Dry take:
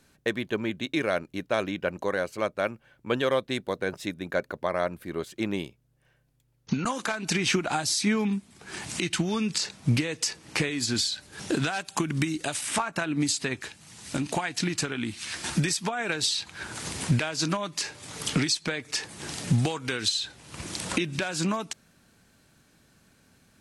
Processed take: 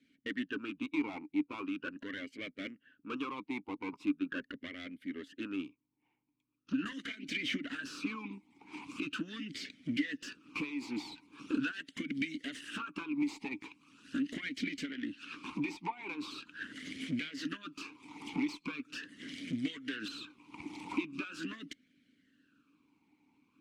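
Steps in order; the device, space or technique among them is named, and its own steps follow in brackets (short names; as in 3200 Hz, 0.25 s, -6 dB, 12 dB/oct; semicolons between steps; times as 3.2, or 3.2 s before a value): 14.91–16.31 high shelf 7100 Hz -10 dB; harmonic-percussive split harmonic -13 dB; bell 350 Hz -6 dB 0.26 oct; talk box (tube stage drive 33 dB, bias 0.75; vowel sweep i-u 0.41 Hz); gain +13.5 dB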